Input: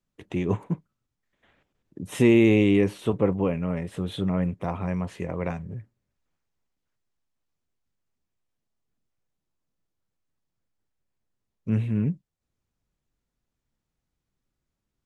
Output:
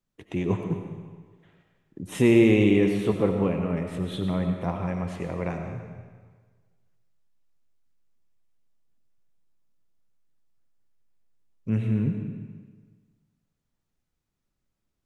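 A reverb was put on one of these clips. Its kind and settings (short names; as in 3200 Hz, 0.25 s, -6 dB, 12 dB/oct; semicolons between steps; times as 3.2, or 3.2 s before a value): digital reverb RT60 1.5 s, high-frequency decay 0.95×, pre-delay 50 ms, DRR 4.5 dB; gain -1 dB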